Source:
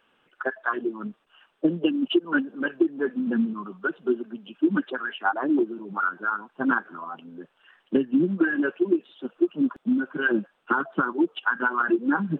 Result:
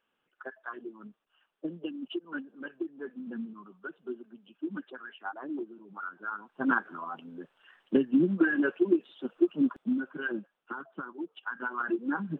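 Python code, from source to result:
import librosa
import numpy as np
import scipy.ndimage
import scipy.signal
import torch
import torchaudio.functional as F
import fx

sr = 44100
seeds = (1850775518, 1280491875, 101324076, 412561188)

y = fx.gain(x, sr, db=fx.line((6.03, -14.0), (6.78, -2.5), (9.63, -2.5), (10.71, -15.5), (11.25, -15.5), (11.87, -8.0)))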